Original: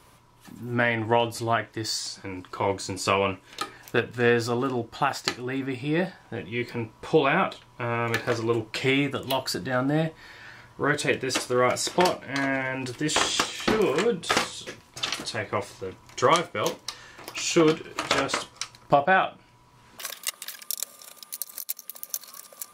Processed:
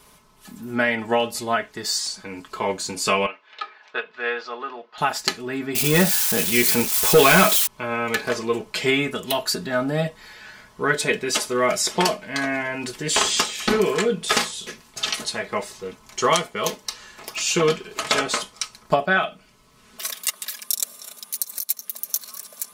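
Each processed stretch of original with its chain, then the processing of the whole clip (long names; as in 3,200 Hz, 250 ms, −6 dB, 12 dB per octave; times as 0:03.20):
0:03.26–0:04.98: band-pass filter 750–4,900 Hz + high-frequency loss of the air 230 metres
0:05.75–0:07.67: spike at every zero crossing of −23.5 dBFS + leveller curve on the samples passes 2
0:18.94–0:20.09: parametric band 910 Hz −8.5 dB 0.22 octaves + notch filter 1,600 Hz, Q 14
whole clip: high-shelf EQ 4,100 Hz +6.5 dB; comb filter 4.7 ms, depth 70%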